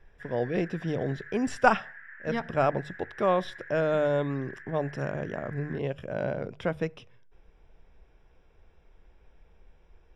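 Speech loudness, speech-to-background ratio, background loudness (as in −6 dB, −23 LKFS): −30.0 LKFS, 15.5 dB, −45.5 LKFS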